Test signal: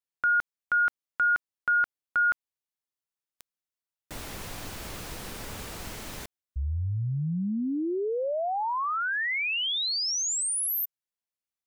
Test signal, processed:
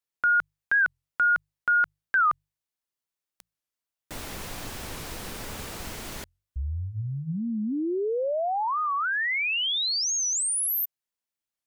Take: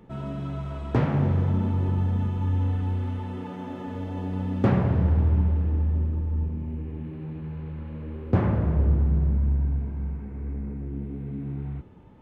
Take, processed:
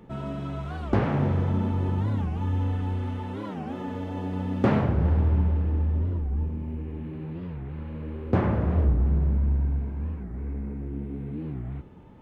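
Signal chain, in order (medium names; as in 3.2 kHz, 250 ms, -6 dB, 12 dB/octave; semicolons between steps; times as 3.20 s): hum notches 50/100/150 Hz; dynamic bell 120 Hz, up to -4 dB, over -36 dBFS, Q 0.75; warped record 45 rpm, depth 250 cents; trim +2 dB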